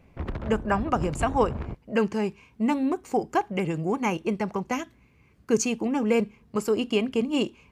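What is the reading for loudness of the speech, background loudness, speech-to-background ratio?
-27.0 LUFS, -35.5 LUFS, 8.5 dB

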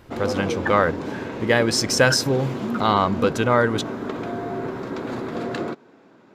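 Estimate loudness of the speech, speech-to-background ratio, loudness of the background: -21.0 LUFS, 8.0 dB, -29.0 LUFS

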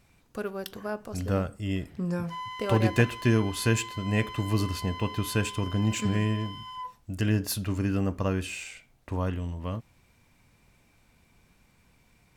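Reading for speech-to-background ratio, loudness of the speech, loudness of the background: 10.5 dB, -29.5 LUFS, -40.0 LUFS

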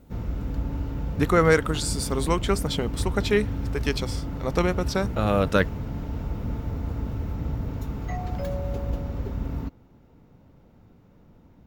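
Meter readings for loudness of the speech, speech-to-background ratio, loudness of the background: -25.5 LUFS, 6.0 dB, -31.5 LUFS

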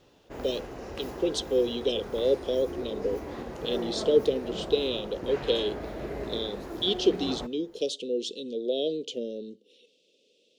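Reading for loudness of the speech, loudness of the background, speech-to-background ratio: -29.5 LUFS, -37.5 LUFS, 8.0 dB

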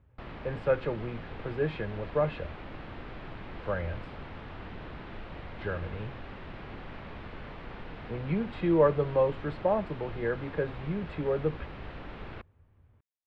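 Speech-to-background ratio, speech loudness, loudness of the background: 12.5 dB, -31.5 LUFS, -44.0 LUFS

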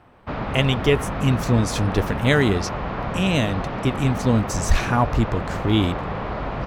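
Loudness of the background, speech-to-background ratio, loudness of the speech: -28.5 LUFS, 6.5 dB, -22.0 LUFS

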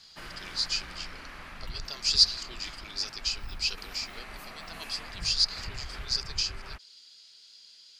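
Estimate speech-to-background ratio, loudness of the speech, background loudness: 15.5 dB, -28.5 LUFS, -44.0 LUFS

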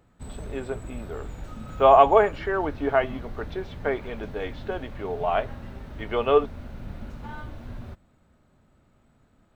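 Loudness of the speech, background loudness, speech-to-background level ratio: -23.5 LUFS, -40.5 LUFS, 17.0 dB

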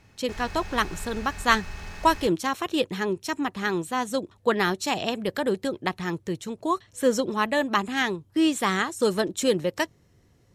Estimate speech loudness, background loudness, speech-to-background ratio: -26.0 LUFS, -40.5 LUFS, 14.5 dB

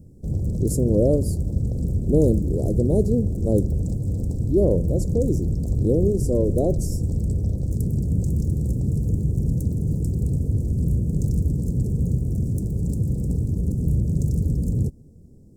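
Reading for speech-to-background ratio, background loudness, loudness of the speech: 1.0 dB, -24.5 LUFS, -23.5 LUFS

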